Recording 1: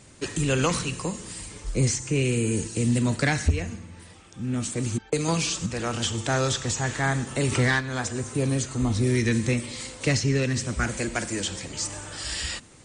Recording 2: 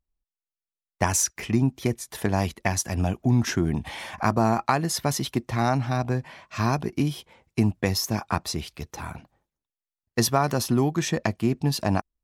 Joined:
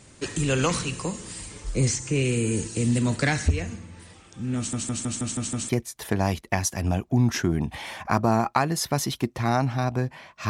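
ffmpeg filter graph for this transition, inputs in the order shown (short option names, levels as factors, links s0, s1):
-filter_complex "[0:a]apad=whole_dur=10.49,atrim=end=10.49,asplit=7[s0][s1][s2][s3][s4][s5][s6];[s0]atrim=end=4.732[s7];[s1]atrim=start=4.568:end=4.732[s8];[s2]atrim=start=4.568:end=4.732[s9];[s3]atrim=start=4.568:end=4.732[s10];[s4]atrim=start=4.568:end=4.732[s11];[s5]atrim=start=4.568:end=4.732[s12];[s6]atrim=start=4.568:end=4.732[s13];[1:a]atrim=start=1.818:end=6.62[s14];[s7][s8]acrossfade=d=0.004:c1=hsin:c2=hsin[s15];[s15][s9]acrossfade=d=0.004:c1=hsin:c2=hsin[s16];[s16][s10]acrossfade=d=0.004:c1=hsin:c2=hsin[s17];[s17][s11]acrossfade=d=0.004:c1=hsin:c2=hsin[s18];[s18][s12]acrossfade=d=0.004:c1=hsin:c2=hsin[s19];[s19][s13]acrossfade=d=0.004:c1=hsin:c2=hsin[s20];[s20][s14]acrossfade=d=0.004:c1=hsin:c2=hsin"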